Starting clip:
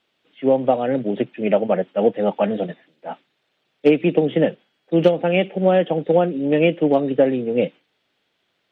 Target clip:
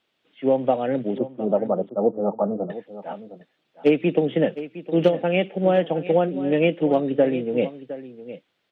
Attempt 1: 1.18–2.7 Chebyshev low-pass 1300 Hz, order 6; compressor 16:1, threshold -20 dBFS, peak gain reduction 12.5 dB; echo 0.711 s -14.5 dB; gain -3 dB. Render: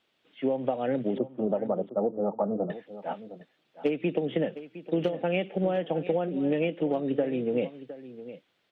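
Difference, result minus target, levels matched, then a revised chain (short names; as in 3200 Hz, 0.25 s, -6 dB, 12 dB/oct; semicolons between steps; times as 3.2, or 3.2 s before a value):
compressor: peak gain reduction +12.5 dB
1.18–2.7 Chebyshev low-pass 1300 Hz, order 6; echo 0.711 s -14.5 dB; gain -3 dB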